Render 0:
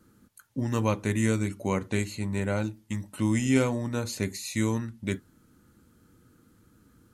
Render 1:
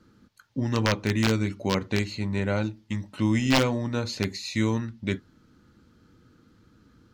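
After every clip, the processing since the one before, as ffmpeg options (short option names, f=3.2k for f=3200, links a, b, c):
-af "aeval=exprs='(mod(5.62*val(0)+1,2)-1)/5.62':c=same,highshelf=f=6.9k:t=q:w=1.5:g=-13.5,volume=2dB"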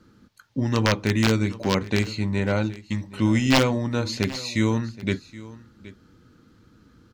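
-af "aecho=1:1:773:0.119,volume=3dB"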